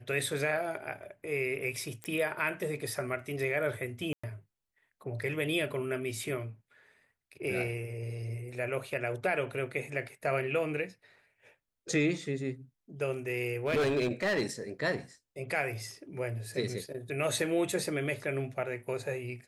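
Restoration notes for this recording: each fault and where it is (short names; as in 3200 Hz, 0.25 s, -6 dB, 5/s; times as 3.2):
2.04 pop -23 dBFS
4.13–4.24 gap 0.105 s
13.47–14.43 clipped -24.5 dBFS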